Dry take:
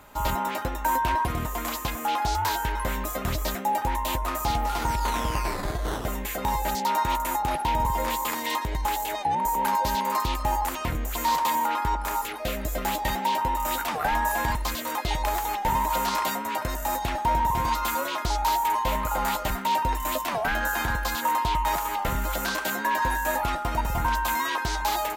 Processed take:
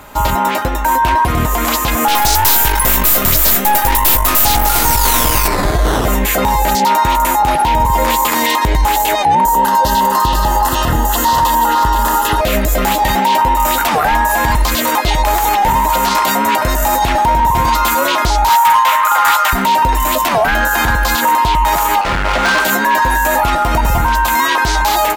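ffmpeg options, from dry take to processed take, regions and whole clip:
ffmpeg -i in.wav -filter_complex "[0:a]asettb=1/sr,asplit=3[link_01][link_02][link_03];[link_01]atrim=end=2.084[link_04];[link_02]atrim=start=2.08:end=5.48,asetpts=PTS-STARTPTS,afade=type=in:duration=0.004:curve=qsin,afade=type=out:start_time=3.396:duration=0.004:curve=qsin,aemphasis=mode=production:type=75fm,aeval=exprs='(tanh(20*val(0)+0.65)-tanh(0.65))/20':channel_layout=same[link_05];[link_03]atrim=start=5.476[link_06];[link_04][link_05]acrossfade=duration=0.004:curve1=hsin:curve2=qsin[link_07];[link_07][link_06]acrossfade=duration=0.004:curve1=qsin:curve2=hsin,asettb=1/sr,asplit=3[link_08][link_09][link_10];[link_08]atrim=end=9.444[link_11];[link_09]atrim=start=9.44:end=12.41,asetpts=PTS-STARTPTS,afade=type=in:duration=0.004:curve=qsin,afade=type=out:start_time=2.966:duration=0.004:curve=qsin,asuperstop=centerf=2300:order=4:qfactor=3.8,bandreject=frequency=208.4:width_type=h:width=4,bandreject=frequency=416.8:width_type=h:width=4,bandreject=frequency=625.2:width_type=h:width=4,bandreject=frequency=833.6:width_type=h:width=4,bandreject=frequency=1042:width_type=h:width=4,bandreject=frequency=1250.4:width_type=h:width=4,bandreject=frequency=1458.8:width_type=h:width=4,bandreject=frequency=1667.2:width_type=h:width=4,bandreject=frequency=1875.6:width_type=h:width=4,bandreject=frequency=2084:width_type=h:width=4,bandreject=frequency=2292.4:width_type=h:width=4,bandreject=frequency=2500.8:width_type=h:width=4,bandreject=frequency=2709.2:width_type=h:width=4,bandreject=frequency=2917.6:width_type=h:width=4,bandreject=frequency=3126:width_type=h:width=4,bandreject=frequency=3334.4:width_type=h:width=4,bandreject=frequency=3542.8:width_type=h:width=4,bandreject=frequency=3751.2:width_type=h:width=4,bandreject=frequency=3959.6:width_type=h:width=4,bandreject=frequency=4168:width_type=h:width=4,bandreject=frequency=4376.4:width_type=h:width=4,bandreject=frequency=4584.8:width_type=h:width=4,bandreject=frequency=4793.2:width_type=h:width=4,bandreject=frequency=5001.6:width_type=h:width=4,bandreject=frequency=5210:width_type=h:width=4,bandreject=frequency=5418.4:width_type=h:width=4,bandreject=frequency=5626.8:width_type=h:width=4,bandreject=frequency=5835.2:width_type=h:width=4,bandreject=frequency=6043.6:width_type=h:width=4,bandreject=frequency=6252:width_type=h:width=4,bandreject=frequency=6460.4:width_type=h:width=4,bandreject=frequency=6668.8:width_type=h:width=4,bandreject=frequency=6877.2:width_type=h:width=4,bandreject=frequency=7085.6:width_type=h:width=4,bandreject=frequency=7294:width_type=h:width=4,bandreject=frequency=7502.4:width_type=h:width=4,bandreject=frequency=7710.8:width_type=h:width=4,bandreject=frequency=7919.2:width_type=h:width=4,aecho=1:1:478:0.398,atrim=end_sample=130977[link_12];[link_10]atrim=start=12.406[link_13];[link_11][link_12]acrossfade=duration=0.004:curve1=hsin:curve2=qsin[link_14];[link_14][link_13]acrossfade=duration=0.004:curve1=qsin:curve2=hsin,asettb=1/sr,asplit=3[link_15][link_16][link_17];[link_15]atrim=end=18.494[link_18];[link_16]atrim=start=18.49:end=19.53,asetpts=PTS-STARTPTS,afade=type=in:duration=0.004:curve=qsin,afade=type=out:start_time=1.036:duration=0.004:curve=qsin,highpass=frequency=1200:width_type=q:width=2.1,bandreject=frequency=4400:width=16,asoftclip=type=hard:threshold=-19dB[link_19];[link_17]atrim=start=19.526[link_20];[link_18][link_19]acrossfade=duration=0.004:curve1=hsin:curve2=qsin[link_21];[link_21][link_20]acrossfade=duration=0.004:curve1=qsin:curve2=hsin,asettb=1/sr,asplit=3[link_22][link_23][link_24];[link_22]atrim=end=22.014[link_25];[link_23]atrim=start=22.01:end=22.6,asetpts=PTS-STARTPTS,afade=type=in:duration=0.004:curve=qsin,afade=type=out:start_time=0.586:duration=0.004:curve=qsin,lowpass=2500,asoftclip=type=hard:threshold=-32dB,lowshelf=frequency=450:gain=-7.5[link_26];[link_24]atrim=start=22.596[link_27];[link_25][link_26]acrossfade=duration=0.004:curve1=hsin:curve2=qsin[link_28];[link_28][link_27]acrossfade=duration=0.004:curve1=qsin:curve2=hsin,dynaudnorm=framelen=930:gausssize=3:maxgain=10.5dB,alimiter=limit=-18dB:level=0:latency=1:release=141,acontrast=54,volume=7.5dB" out.wav

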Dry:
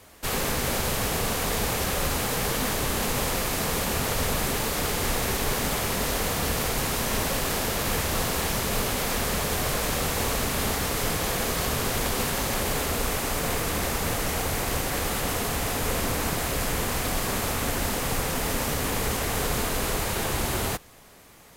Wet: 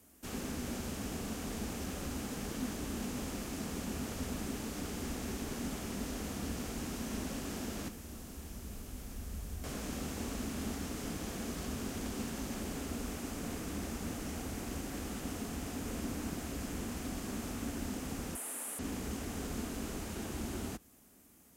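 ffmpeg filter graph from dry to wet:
ffmpeg -i in.wav -filter_complex "[0:a]asettb=1/sr,asplit=3[link_01][link_02][link_03];[link_01]atrim=end=7.884[link_04];[link_02]atrim=start=7.88:end=9.64,asetpts=PTS-STARTPTS,afade=type=in:duration=0.004:curve=qsin,afade=type=out:start_time=1.756:duration=0.004:curve=qsin,acrossover=split=230|500|3700[link_05][link_06][link_07][link_08];[link_05]acompressor=threshold=-39dB:ratio=3[link_09];[link_06]acompressor=threshold=-47dB:ratio=3[link_10];[link_07]acompressor=threshold=-44dB:ratio=3[link_11];[link_08]acompressor=threshold=-42dB:ratio=3[link_12];[link_09][link_10][link_11][link_12]amix=inputs=4:normalize=0,asubboost=boost=9.5:cutoff=100[link_13];[link_03]atrim=start=9.636[link_14];[link_04][link_13]acrossfade=duration=0.004:curve1=hsin:curve2=qsin[link_15];[link_15][link_14]acrossfade=duration=0.004:curve1=qsin:curve2=hsin,asettb=1/sr,asplit=3[link_16][link_17][link_18];[link_16]atrim=end=18.354[link_19];[link_17]atrim=start=18.35:end=18.79,asetpts=PTS-STARTPTS,afade=type=in:duration=0.004:curve=qsin,afade=type=out:start_time=0.436:duration=0.004:curve=qsin,highshelf=frequency=7600:width_type=q:width=3:gain=13,asoftclip=type=hard:threshold=-10dB,highpass=610[link_20];[link_18]atrim=start=18.786[link_21];[link_19][link_20]acrossfade=duration=0.004:curve1=hsin:curve2=qsin[link_22];[link_22][link_21]acrossfade=duration=0.004:curve1=qsin:curve2=hsin,highpass=52,acrossover=split=6900[link_23][link_24];[link_24]acompressor=threshold=-48dB:ratio=4:attack=1:release=60[link_25];[link_23][link_25]amix=inputs=2:normalize=0,equalizer=frequency=125:width_type=o:width=1:gain=-10,equalizer=frequency=250:width_type=o:width=1:gain=7,equalizer=frequency=500:width_type=o:width=1:gain=-9,equalizer=frequency=1000:width_type=o:width=1:gain=-9,equalizer=frequency=2000:width_type=o:width=1:gain=-8,equalizer=frequency=4000:width_type=o:width=1:gain=-10,volume=-6.5dB" out.wav

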